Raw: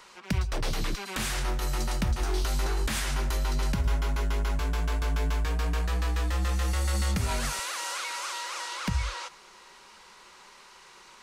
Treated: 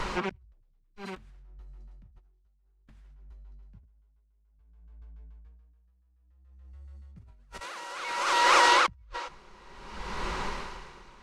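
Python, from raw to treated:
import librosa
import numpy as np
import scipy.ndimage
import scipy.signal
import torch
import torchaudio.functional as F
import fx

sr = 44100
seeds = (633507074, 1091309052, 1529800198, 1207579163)

y = fx.riaa(x, sr, side='playback')
y = fx.over_compress(y, sr, threshold_db=-38.0, ratio=-1.0)
y = y * 10.0 ** (-21 * (0.5 - 0.5 * np.cos(2.0 * np.pi * 0.58 * np.arange(len(y)) / sr)) / 20.0)
y = y * librosa.db_to_amplitude(2.0)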